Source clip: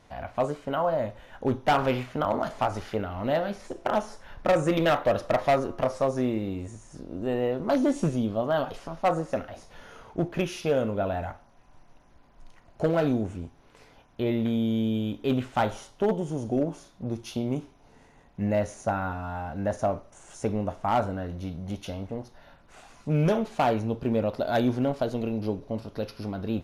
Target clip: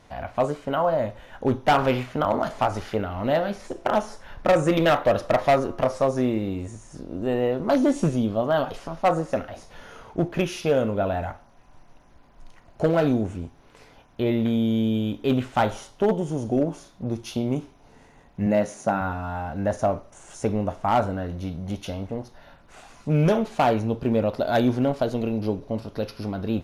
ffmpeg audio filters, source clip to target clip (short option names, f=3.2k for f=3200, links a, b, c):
-filter_complex "[0:a]asettb=1/sr,asplit=3[a][b][c];[a]atrim=end=18.464[d];[b]atrim=start=18.46:end=19.01,asetpts=PTS-STARTPTS,afade=t=in:d=0.004:c=qsin,afade=t=out:st=0.546:d=0.004:c=qsin,lowshelf=f=110:t=q:w=1.5:g=-13.5[e];[c]atrim=start=19.006[f];[d][e]acrossfade=d=0.004:c1=hsin:c2=qsin[g];[g][f]acrossfade=d=0.004:c1=qsin:c2=hsin,volume=3.5dB"